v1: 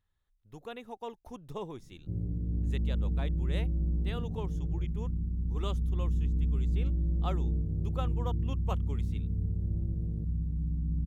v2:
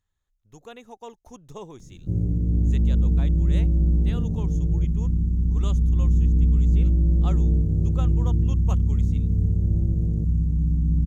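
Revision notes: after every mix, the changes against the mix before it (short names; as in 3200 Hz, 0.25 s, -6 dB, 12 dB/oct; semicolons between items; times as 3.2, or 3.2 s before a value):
background +10.5 dB; master: add bell 6600 Hz +13 dB 0.43 oct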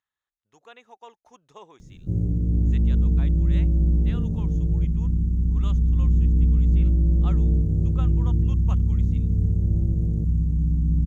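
speech: add band-pass 1700 Hz, Q 0.67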